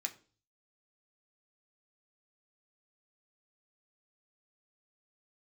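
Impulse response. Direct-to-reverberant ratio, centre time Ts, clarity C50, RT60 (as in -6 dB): 3.0 dB, 7 ms, 16.5 dB, 0.40 s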